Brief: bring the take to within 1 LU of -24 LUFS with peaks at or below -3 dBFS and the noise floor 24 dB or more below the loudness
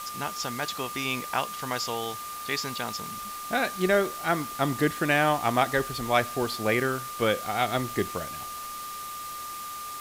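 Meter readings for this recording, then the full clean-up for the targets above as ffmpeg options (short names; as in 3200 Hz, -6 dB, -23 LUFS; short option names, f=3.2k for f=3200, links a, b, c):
steady tone 1200 Hz; tone level -36 dBFS; noise floor -38 dBFS; noise floor target -52 dBFS; loudness -28.0 LUFS; peak -8.5 dBFS; loudness target -24.0 LUFS
-> -af "bandreject=f=1.2k:w=30"
-af "afftdn=nr=14:nf=-38"
-af "volume=4dB"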